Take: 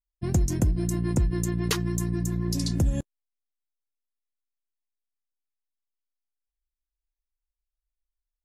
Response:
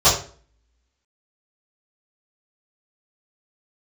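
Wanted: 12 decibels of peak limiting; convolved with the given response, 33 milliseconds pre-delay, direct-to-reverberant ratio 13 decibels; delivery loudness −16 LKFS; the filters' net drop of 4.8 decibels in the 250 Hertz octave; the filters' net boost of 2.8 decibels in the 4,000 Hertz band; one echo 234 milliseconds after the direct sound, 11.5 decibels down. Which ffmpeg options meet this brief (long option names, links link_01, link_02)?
-filter_complex "[0:a]equalizer=frequency=250:width_type=o:gain=-8.5,equalizer=frequency=4000:width_type=o:gain=3.5,alimiter=limit=-23dB:level=0:latency=1,aecho=1:1:234:0.266,asplit=2[link_01][link_02];[1:a]atrim=start_sample=2205,adelay=33[link_03];[link_02][link_03]afir=irnorm=-1:irlink=0,volume=-35.5dB[link_04];[link_01][link_04]amix=inputs=2:normalize=0,volume=15.5dB"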